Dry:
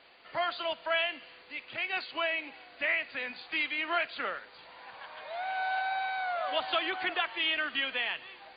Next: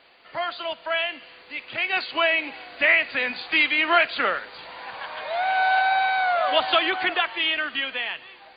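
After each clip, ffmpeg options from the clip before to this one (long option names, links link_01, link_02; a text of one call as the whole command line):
ffmpeg -i in.wav -af "dynaudnorm=framelen=330:gausssize=11:maxgain=8.5dB,volume=3dB" out.wav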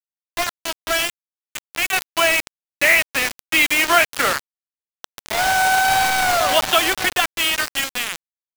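ffmpeg -i in.wav -af "acrusher=bits=3:mix=0:aa=0.000001,volume=3.5dB" out.wav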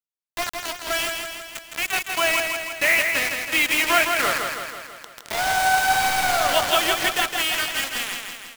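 ffmpeg -i in.wav -af "aecho=1:1:163|326|489|652|815|978|1141|1304:0.562|0.326|0.189|0.11|0.0636|0.0369|0.0214|0.0124,volume=-4.5dB" out.wav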